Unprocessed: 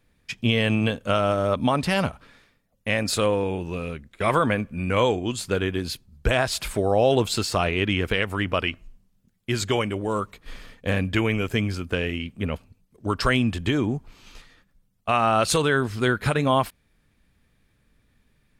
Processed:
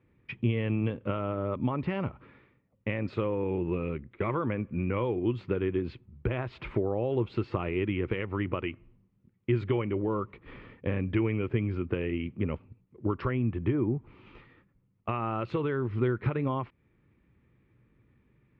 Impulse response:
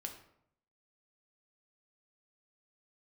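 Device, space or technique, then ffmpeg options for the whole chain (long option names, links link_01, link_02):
bass amplifier: -filter_complex "[0:a]acompressor=threshold=-28dB:ratio=4,highpass=60,equalizer=frequency=120:width_type=q:width=4:gain=7,equalizer=frequency=350:width_type=q:width=4:gain=8,equalizer=frequency=690:width_type=q:width=4:gain=-8,equalizer=frequency=1600:width_type=q:width=4:gain=-8,lowpass=frequency=2300:width=0.5412,lowpass=frequency=2300:width=1.3066,asettb=1/sr,asplit=3[link_01][link_02][link_03];[link_01]atrim=end=13.314[link_04];[link_02]atrim=start=13.31:end=13.95,asetpts=PTS-STARTPTS,afade=type=in:duration=0.004:curve=qsin,afade=type=out:start_time=0.636:duration=0.004:curve=qsin,lowpass=2200[link_05];[link_03]atrim=start=13.946[link_06];[link_04][link_05]acrossfade=duration=0.004:curve1=hsin:curve2=qsin[link_07];[link_07][link_06]acrossfade=duration=0.004:curve1=qsin:curve2=hsin"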